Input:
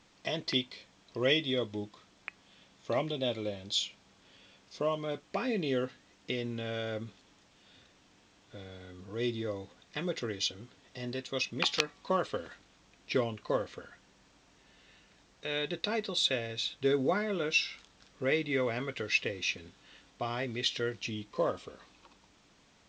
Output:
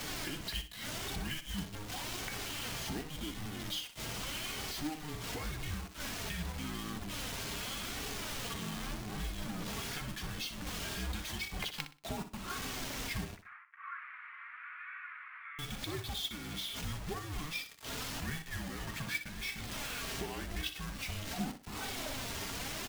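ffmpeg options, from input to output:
-filter_complex "[0:a]aeval=exprs='val(0)+0.5*0.02*sgn(val(0))':c=same,agate=range=0.447:threshold=0.0447:ratio=16:detection=peak,acompressor=threshold=0.01:ratio=5,acrusher=bits=7:mix=0:aa=0.000001,flanger=delay=2.7:depth=1.5:regen=40:speed=0.87:shape=sinusoidal,acrusher=bits=2:mode=log:mix=0:aa=0.000001,afreqshift=-310,asettb=1/sr,asplit=3[s0][s1][s2];[s0]atrim=end=13.364[s3];[s1]atrim=start=13.36:end=15.59,asetpts=PTS-STARTPTS,afade=t=in:d=0.004:c=qsin,afade=t=out:st=2.226:d=0.004:c=qsin,asuperpass=centerf=1600:order=8:qfactor=1.4[s4];[s2]atrim=start=15.586[s5];[s3][s4]acrossfade=d=0.004:c1=hsin:c2=qsin[s6];[s6][s5]acrossfade=d=0.004:c1=qsin:c2=hsin,aecho=1:1:61|122|183:0.282|0.0761|0.0205,volume=1.88"

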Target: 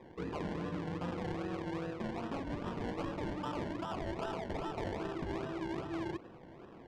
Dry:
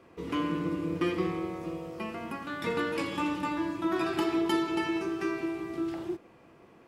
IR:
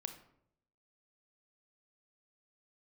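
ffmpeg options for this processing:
-af "afftfilt=real='re*lt(hypot(re,im),0.224)':imag='im*lt(hypot(re,im),0.224)':win_size=1024:overlap=0.75,adynamicequalizer=threshold=0.00398:dfrequency=110:dqfactor=1.2:tfrequency=110:tqfactor=1.2:attack=5:release=100:ratio=0.375:range=1.5:mode=boostabove:tftype=bell,areverse,acompressor=threshold=0.0126:ratio=8,areverse,acrusher=samples=28:mix=1:aa=0.000001:lfo=1:lforange=16.8:lforate=2.5,adynamicsmooth=sensitivity=3.5:basefreq=2400,volume=1.5"

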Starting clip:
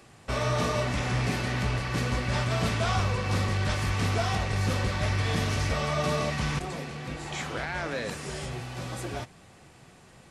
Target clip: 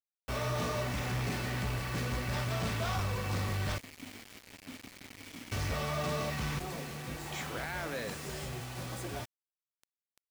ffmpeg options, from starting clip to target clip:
-filter_complex "[0:a]asoftclip=type=tanh:threshold=0.075,asettb=1/sr,asplit=3[s0][s1][s2];[s0]atrim=end=3.784[s3];[s1]atrim=start=3.78:end=5.52,asetpts=PTS-STARTPTS,afade=t=in:d=0.004:c=qsin,afade=t=out:st=1.736:d=0.004:c=qsin,asplit=3[s4][s5][s6];[s4]bandpass=f=270:t=q:w=8,volume=1[s7];[s5]bandpass=f=2290:t=q:w=8,volume=0.501[s8];[s6]bandpass=f=3010:t=q:w=8,volume=0.355[s9];[s7][s8][s9]amix=inputs=3:normalize=0[s10];[s2]atrim=start=5.516[s11];[s3][s10]acrossfade=d=0.004:c1=hsin:c2=qsin[s12];[s12][s11]acrossfade=d=0.004:c1=qsin:c2=hsin,acrusher=bits=6:mix=0:aa=0.000001,volume=0.596"

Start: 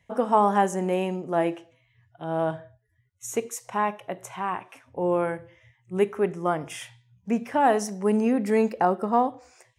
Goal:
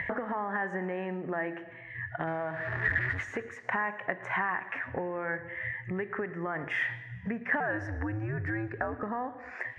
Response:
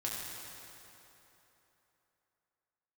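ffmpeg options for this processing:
-filter_complex "[0:a]asettb=1/sr,asplit=3[s0][s1][s2];[s0]atrim=end=2.274[s3];[s1]atrim=start=2.27:end=3.42,asetpts=PTS-STARTPTS,afade=t=in:d=0.004:c=qsin,afade=t=out:st=1.146:d=0.004:c=qsin,aeval=exprs='val(0)+0.5*0.0141*sgn(val(0))':c=same[s4];[s2]atrim=start=3.416[s5];[s3][s4]acrossfade=d=0.004:c1=hsin:c2=qsin[s6];[s6][s5]acrossfade=d=0.004:c1=qsin:c2=hsin,highpass=43,asplit=2[s7][s8];[s8]acompressor=mode=upward:threshold=0.0501:ratio=2.5,volume=0.891[s9];[s7][s9]amix=inputs=2:normalize=0,alimiter=limit=0.211:level=0:latency=1:release=117,acompressor=threshold=0.0224:ratio=6,lowpass=f=1800:t=q:w=8.7,asettb=1/sr,asplit=3[s10][s11][s12];[s10]atrim=end=7.604[s13];[s11]atrim=start=7.6:end=9.03,asetpts=PTS-STARTPTS,afade=t=in:d=0.004:c=qsin,afade=t=out:st=1.426:d=0.004:c=qsin,afreqshift=-110[s14];[s12]atrim=start=9.026[s15];[s13][s14]acrossfade=d=0.004:c1=hsin:c2=qsin[s16];[s16][s15]acrossfade=d=0.004:c1=qsin:c2=hsin,asplit=2[s17][s18];[1:a]atrim=start_sample=2205,afade=t=out:st=0.44:d=0.01,atrim=end_sample=19845,adelay=112[s19];[s18][s19]afir=irnorm=-1:irlink=0,volume=0.112[s20];[s17][s20]amix=inputs=2:normalize=0"

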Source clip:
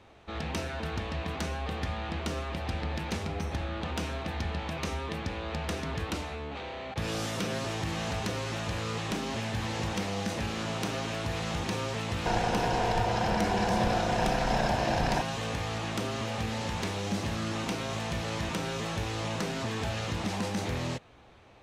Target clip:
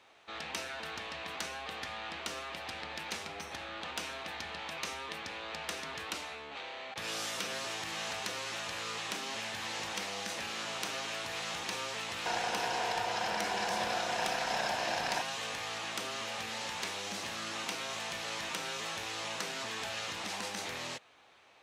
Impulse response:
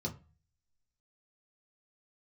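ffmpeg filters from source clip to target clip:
-af "highpass=f=1400:p=1,volume=1.12"

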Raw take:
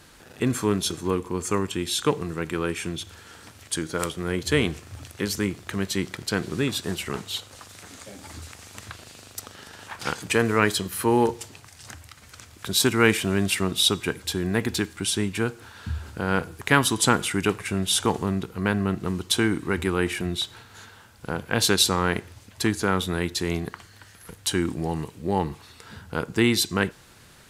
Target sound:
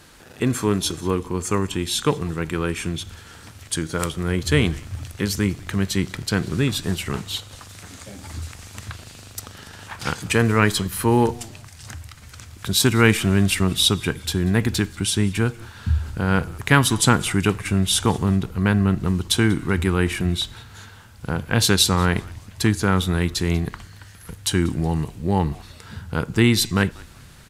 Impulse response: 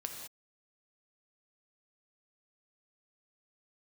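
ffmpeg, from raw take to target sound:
-filter_complex "[0:a]asubboost=boost=2:cutoff=220,asplit=2[s0][s1];[s1]asplit=2[s2][s3];[s2]adelay=189,afreqshift=-120,volume=0.0708[s4];[s3]adelay=378,afreqshift=-240,volume=0.0219[s5];[s4][s5]amix=inputs=2:normalize=0[s6];[s0][s6]amix=inputs=2:normalize=0,volume=1.33"

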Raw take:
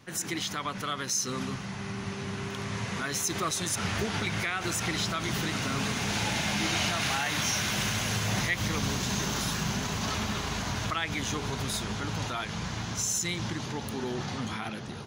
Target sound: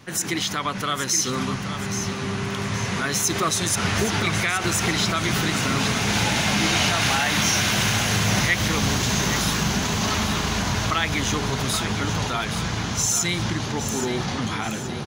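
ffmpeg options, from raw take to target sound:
-af "aecho=1:1:822|1644|2466|3288|4110:0.335|0.141|0.0591|0.0248|0.0104,volume=2.37"

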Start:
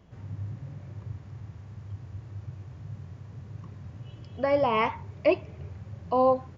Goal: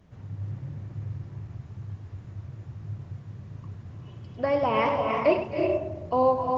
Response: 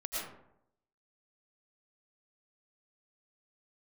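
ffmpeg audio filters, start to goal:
-filter_complex "[0:a]asettb=1/sr,asplit=3[s0][s1][s2];[s0]atrim=end=0.504[s3];[s1]atrim=start=0.5:end=1.83,asetpts=PTS-STARTPTS,afade=t=in:d=0.004:c=qsin,afade=t=out:st=1.326:d=0.004:c=qsin,equalizer=f=130:w=3.8:g=3.5[s4];[s2]atrim=start=1.826[s5];[s3][s4]acrossfade=d=0.004:c1=hsin:c2=qsin[s6];[s6][s5]acrossfade=d=0.004:c1=qsin:c2=hsin,asettb=1/sr,asplit=3[s7][s8][s9];[s7]atrim=end=4.824[s10];[s8]atrim=start=4.82:end=5.43,asetpts=PTS-STARTPTS,afade=t=in:d=0.004:c=qsin,afade=t=out:st=0.606:d=0.004:c=qsin,asplit=2[s11][s12];[s12]adelay=34,volume=0.422[s13];[s11][s13]amix=inputs=2:normalize=0,atrim=end_sample=26901[s14];[s9]atrim=start=5.426[s15];[s10][s14]acrossfade=d=0.004:c1=hsin:c2=qsin[s16];[s16][s15]acrossfade=d=0.004:c1=qsin:c2=hsin,asplit=2[s17][s18];[1:a]atrim=start_sample=2205,asetrate=23373,aresample=44100,adelay=99[s19];[s18][s19]afir=irnorm=-1:irlink=0,volume=0.335[s20];[s17][s20]amix=inputs=2:normalize=0" -ar 48000 -c:a libopus -b:a 16k

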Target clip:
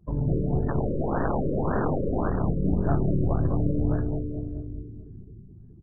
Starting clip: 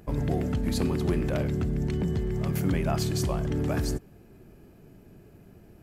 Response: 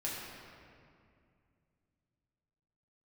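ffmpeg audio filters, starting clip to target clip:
-filter_complex "[0:a]asplit=2[s0][s1];[1:a]atrim=start_sample=2205,lowpass=1900,lowshelf=f=140:g=8[s2];[s1][s2]afir=irnorm=-1:irlink=0,volume=0.422[s3];[s0][s3]amix=inputs=2:normalize=0,asplit=3[s4][s5][s6];[s4]afade=t=out:st=0.68:d=0.02[s7];[s5]aeval=exprs='(mod(7.94*val(0)+1,2)-1)/7.94':c=same,afade=t=in:st=0.68:d=0.02,afade=t=out:st=2.27:d=0.02[s8];[s6]afade=t=in:st=2.27:d=0.02[s9];[s7][s8][s9]amix=inputs=3:normalize=0,aeval=exprs='0.376*(cos(1*acos(clip(val(0)/0.376,-1,1)))-cos(1*PI/2))+0.0531*(cos(4*acos(clip(val(0)/0.376,-1,1)))-cos(4*PI/2))':c=same,asplit=2[s10][s11];[s11]adelay=214,lowpass=f=3500:p=1,volume=0.668,asplit=2[s12][s13];[s13]adelay=214,lowpass=f=3500:p=1,volume=0.52,asplit=2[s14][s15];[s15]adelay=214,lowpass=f=3500:p=1,volume=0.52,asplit=2[s16][s17];[s17]adelay=214,lowpass=f=3500:p=1,volume=0.52,asplit=2[s18][s19];[s19]adelay=214,lowpass=f=3500:p=1,volume=0.52,asplit=2[s20][s21];[s21]adelay=214,lowpass=f=3500:p=1,volume=0.52,asplit=2[s22][s23];[s23]adelay=214,lowpass=f=3500:p=1,volume=0.52[s24];[s10][s12][s14][s16][s18][s20][s22][s24]amix=inputs=8:normalize=0,afftdn=nr=20:nf=-38,afftfilt=real='re*lt(b*sr/1024,580*pow(1900/580,0.5+0.5*sin(2*PI*1.8*pts/sr)))':imag='im*lt(b*sr/1024,580*pow(1900/580,0.5+0.5*sin(2*PI*1.8*pts/sr)))':win_size=1024:overlap=0.75,volume=0.668"

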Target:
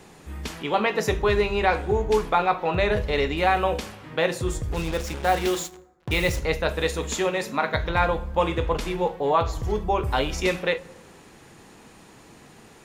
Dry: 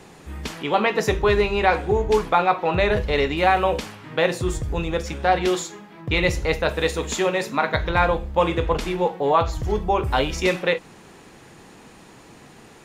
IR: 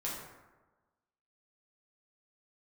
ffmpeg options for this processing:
-filter_complex "[0:a]highshelf=f=8100:g=4,asplit=3[s0][s1][s2];[s0]afade=t=out:st=4.71:d=0.02[s3];[s1]acrusher=bits=4:mix=0:aa=0.5,afade=t=in:st=4.71:d=0.02,afade=t=out:st=6.39:d=0.02[s4];[s2]afade=t=in:st=6.39:d=0.02[s5];[s3][s4][s5]amix=inputs=3:normalize=0,asplit=2[s6][s7];[1:a]atrim=start_sample=2205,lowshelf=f=150:g=10[s8];[s7][s8]afir=irnorm=-1:irlink=0,volume=0.1[s9];[s6][s9]amix=inputs=2:normalize=0,volume=0.668"

